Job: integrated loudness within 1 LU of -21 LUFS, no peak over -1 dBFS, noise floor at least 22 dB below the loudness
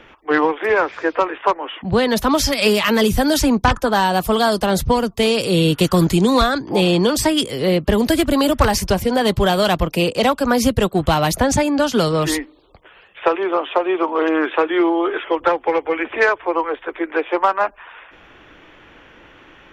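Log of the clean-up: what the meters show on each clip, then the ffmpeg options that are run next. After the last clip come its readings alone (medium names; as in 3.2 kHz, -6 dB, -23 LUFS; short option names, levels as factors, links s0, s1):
loudness -17.5 LUFS; peak level -2.0 dBFS; loudness target -21.0 LUFS
-> -af "volume=0.668"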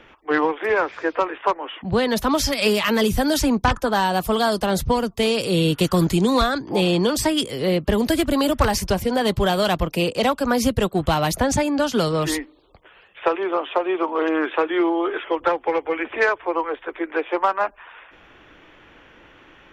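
loudness -21.0 LUFS; peak level -5.5 dBFS; noise floor -51 dBFS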